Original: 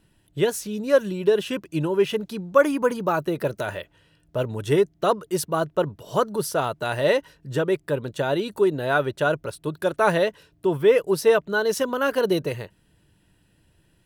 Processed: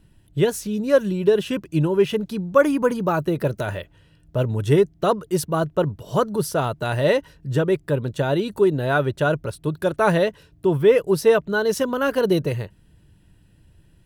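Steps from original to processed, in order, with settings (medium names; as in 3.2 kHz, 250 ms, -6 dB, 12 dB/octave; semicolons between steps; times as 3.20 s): bass shelf 190 Hz +11.5 dB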